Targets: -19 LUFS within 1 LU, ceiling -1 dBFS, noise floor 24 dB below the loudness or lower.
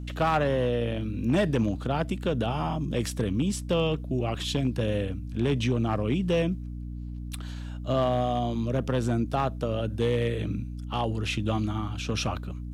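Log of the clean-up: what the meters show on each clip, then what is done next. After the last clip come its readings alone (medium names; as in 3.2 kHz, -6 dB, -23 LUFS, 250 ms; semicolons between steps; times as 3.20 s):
clipped samples 0.7%; clipping level -17.5 dBFS; hum 60 Hz; highest harmonic 300 Hz; hum level -33 dBFS; loudness -28.0 LUFS; peak level -17.5 dBFS; loudness target -19.0 LUFS
-> clip repair -17.5 dBFS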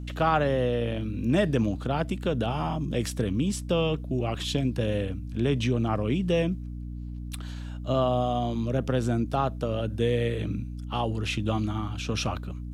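clipped samples 0.0%; hum 60 Hz; highest harmonic 300 Hz; hum level -33 dBFS
-> hum notches 60/120/180/240/300 Hz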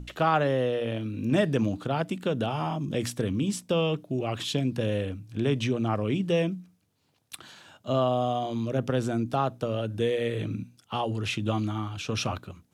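hum not found; loudness -28.5 LUFS; peak level -11.0 dBFS; loudness target -19.0 LUFS
-> trim +9.5 dB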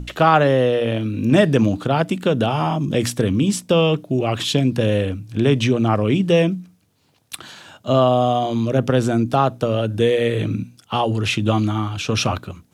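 loudness -19.0 LUFS; peak level -1.5 dBFS; noise floor -58 dBFS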